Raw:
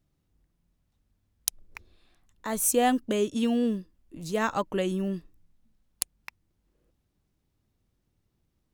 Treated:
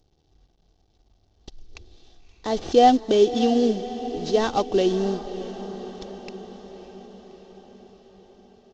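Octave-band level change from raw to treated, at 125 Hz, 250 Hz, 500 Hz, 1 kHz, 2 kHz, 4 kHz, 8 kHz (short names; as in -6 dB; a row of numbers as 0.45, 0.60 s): +2.0, +4.5, +9.5, +9.0, -1.0, +7.0, -10.0 dB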